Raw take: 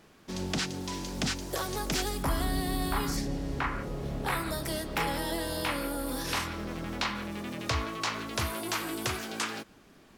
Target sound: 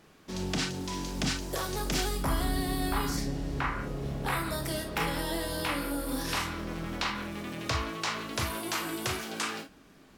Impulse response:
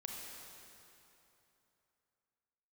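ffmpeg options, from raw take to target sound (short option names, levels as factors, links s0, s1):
-filter_complex "[1:a]atrim=start_sample=2205,atrim=end_sample=3528,asetrate=57330,aresample=44100[s0];[0:a][s0]afir=irnorm=-1:irlink=0,volume=2.11"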